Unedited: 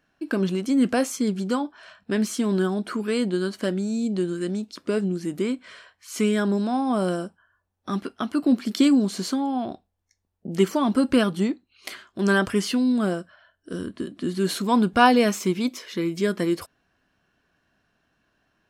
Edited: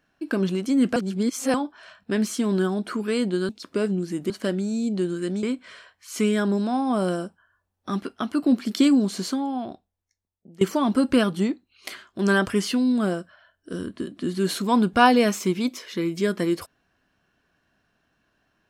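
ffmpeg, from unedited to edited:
ffmpeg -i in.wav -filter_complex "[0:a]asplit=7[link_01][link_02][link_03][link_04][link_05][link_06][link_07];[link_01]atrim=end=0.962[link_08];[link_02]atrim=start=0.958:end=1.542,asetpts=PTS-STARTPTS,areverse[link_09];[link_03]atrim=start=1.538:end=3.492[link_10];[link_04]atrim=start=4.618:end=5.432[link_11];[link_05]atrim=start=3.488:end=4.622[link_12];[link_06]atrim=start=5.428:end=10.61,asetpts=PTS-STARTPTS,afade=type=out:start_time=3.752:duration=1.43:silence=0.0841395[link_13];[link_07]atrim=start=10.61,asetpts=PTS-STARTPTS,afade=type=in:duration=0.004:curve=hsin:silence=0.0841395[link_14];[link_08][link_09]acrossfade=duration=0.004:curve1=hsin:curve2=hsin[link_15];[link_15][link_10]acrossfade=duration=0.004:curve1=hsin:curve2=hsin[link_16];[link_16][link_11]acrossfade=duration=0.004:curve1=hsin:curve2=hsin[link_17];[link_17][link_12]acrossfade=duration=0.004:curve1=hsin:curve2=hsin[link_18];[link_13][link_14]concat=n=2:v=0:a=1[link_19];[link_18][link_19]acrossfade=duration=0.004:curve1=hsin:curve2=hsin" out.wav

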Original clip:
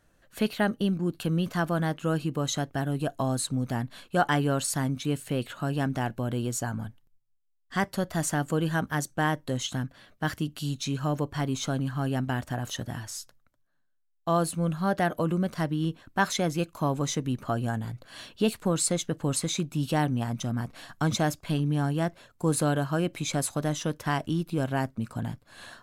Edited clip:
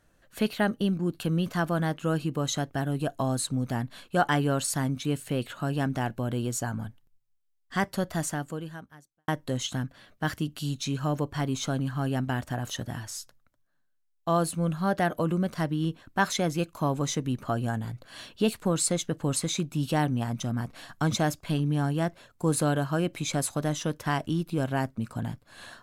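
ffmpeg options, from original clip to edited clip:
ffmpeg -i in.wav -filter_complex "[0:a]asplit=2[link_01][link_02];[link_01]atrim=end=9.28,asetpts=PTS-STARTPTS,afade=type=out:start_time=8.11:duration=1.17:curve=qua[link_03];[link_02]atrim=start=9.28,asetpts=PTS-STARTPTS,afade=type=in:duration=0.004:curve=hsin[link_04];[link_03][link_04]concat=n=2:v=0:a=1" out.wav

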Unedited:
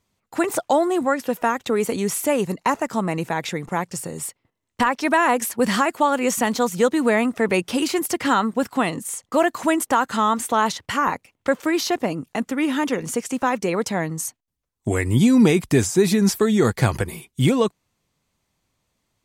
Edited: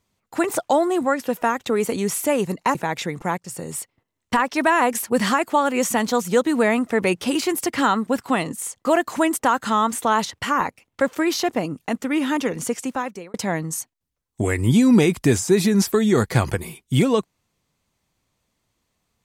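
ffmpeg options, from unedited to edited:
ffmpeg -i in.wav -filter_complex "[0:a]asplit=4[link_01][link_02][link_03][link_04];[link_01]atrim=end=2.752[link_05];[link_02]atrim=start=3.218:end=3.85,asetpts=PTS-STARTPTS,afade=type=out:start_time=0.628:duration=0.004:curve=hsin:silence=0.211349[link_06];[link_03]atrim=start=3.85:end=13.81,asetpts=PTS-STARTPTS,afade=type=in:duration=0.25:silence=0.211349,afade=type=out:start_time=9.37:duration=0.59[link_07];[link_04]atrim=start=13.81,asetpts=PTS-STARTPTS,afade=type=in:duration=0.004:curve=hsin[link_08];[link_06][link_07][link_08]concat=n=3:v=0:a=1[link_09];[link_05][link_09]acrossfade=duration=0.004:curve1=hsin:curve2=hsin" out.wav

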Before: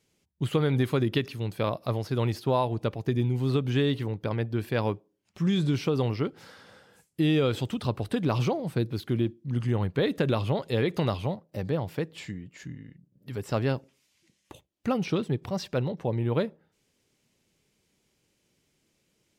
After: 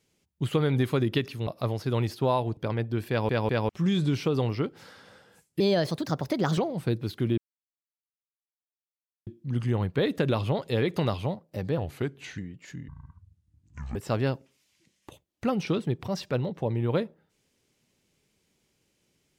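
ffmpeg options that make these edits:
ffmpeg -i in.wav -filter_complex "[0:a]asplit=13[link_01][link_02][link_03][link_04][link_05][link_06][link_07][link_08][link_09][link_10][link_11][link_12][link_13];[link_01]atrim=end=1.472[link_14];[link_02]atrim=start=1.718:end=2.822[link_15];[link_03]atrim=start=4.178:end=4.902[link_16];[link_04]atrim=start=4.698:end=4.902[link_17];[link_05]atrim=start=4.698:end=4.902[link_18];[link_06]atrim=start=5.298:end=7.214[link_19];[link_07]atrim=start=7.21:end=8.47,asetpts=PTS-STARTPTS,asetrate=56889,aresample=44100,atrim=end_sample=43074,asetpts=PTS-STARTPTS[link_20];[link_08]atrim=start=8.466:end=9.27,asetpts=PTS-STARTPTS,afade=type=out:start_time=0.8:duration=0.004:curve=hsin,apad=pad_dur=1.89[link_21];[link_09]atrim=start=9.27:end=11.784,asetpts=PTS-STARTPTS,afade=type=in:duration=0.004:curve=hsin[link_22];[link_10]atrim=start=11.78:end=12.3,asetpts=PTS-STARTPTS,asetrate=37926,aresample=44100,atrim=end_sample=26665,asetpts=PTS-STARTPTS[link_23];[link_11]atrim=start=12.296:end=12.804[link_24];[link_12]atrim=start=12.8:end=13.38,asetpts=PTS-STARTPTS,asetrate=23814,aresample=44100[link_25];[link_13]atrim=start=13.376[link_26];[link_14][link_15]acrossfade=duration=0.004:curve1=hsin:curve2=hsin[link_27];[link_27][link_16]acrossfade=duration=0.004:curve1=hsin:curve2=hsin[link_28];[link_28][link_17]acrossfade=duration=0.004:curve1=hsin:curve2=hsin[link_29];[link_29][link_18]acrossfade=duration=0.004:curve1=hsin:curve2=hsin[link_30];[link_30][link_19]acrossfade=duration=0.004:curve1=hsin:curve2=hsin[link_31];[link_31][link_20]acrossfade=duration=0.004:curve1=hsin:curve2=hsin[link_32];[link_21][link_22]concat=n=2:v=0:a=1[link_33];[link_32][link_33]acrossfade=duration=0.004:curve1=hsin:curve2=hsin[link_34];[link_34][link_23]acrossfade=duration=0.004:curve1=hsin:curve2=hsin[link_35];[link_35][link_24]acrossfade=duration=0.004:curve1=hsin:curve2=hsin[link_36];[link_36][link_25]acrossfade=duration=0.004:curve1=hsin:curve2=hsin[link_37];[link_37][link_26]acrossfade=duration=0.004:curve1=hsin:curve2=hsin" out.wav

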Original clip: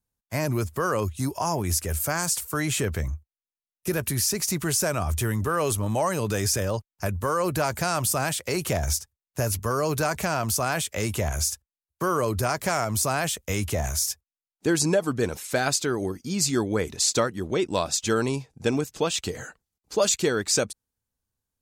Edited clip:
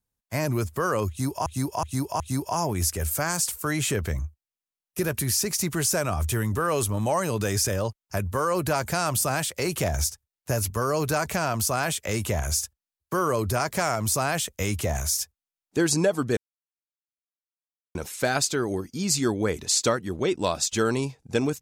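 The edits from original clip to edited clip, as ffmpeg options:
ffmpeg -i in.wav -filter_complex "[0:a]asplit=5[link_01][link_02][link_03][link_04][link_05];[link_01]atrim=end=1.462[link_06];[link_02]atrim=start=1.088:end=1.462[link_07];[link_03]atrim=start=1.088:end=1.462[link_08];[link_04]atrim=start=1.088:end=15.26,asetpts=PTS-STARTPTS,afade=type=out:start_time=14.168:duration=0.004:curve=hsin,apad=pad_dur=1.58[link_09];[link_05]atrim=start=15.26,asetpts=PTS-STARTPTS,afade=type=in:duration=0.004:curve=hsin[link_10];[link_06][link_07]acrossfade=duration=0.004:curve1=hsin:curve2=hsin[link_11];[link_11][link_08]acrossfade=duration=0.004:curve1=hsin:curve2=hsin[link_12];[link_09][link_10]concat=n=2:v=0:a=1[link_13];[link_12][link_13]acrossfade=duration=0.004:curve1=hsin:curve2=hsin" out.wav

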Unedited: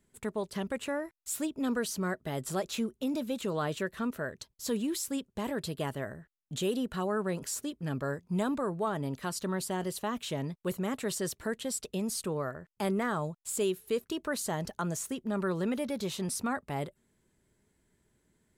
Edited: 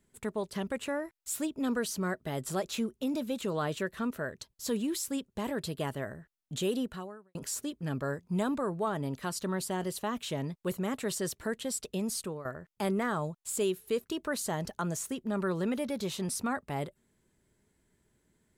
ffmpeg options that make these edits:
ffmpeg -i in.wav -filter_complex "[0:a]asplit=3[link_01][link_02][link_03];[link_01]atrim=end=7.35,asetpts=PTS-STARTPTS,afade=type=out:start_time=6.82:duration=0.53:curve=qua[link_04];[link_02]atrim=start=7.35:end=12.45,asetpts=PTS-STARTPTS,afade=type=in:duration=0.004:curve=hsin,afade=type=out:start_time=4.82:duration=0.28:silence=0.223872[link_05];[link_03]atrim=start=12.45,asetpts=PTS-STARTPTS,afade=type=in:duration=0.004:curve=hsin:silence=0.223872[link_06];[link_04][link_05][link_06]concat=n=3:v=0:a=1" out.wav

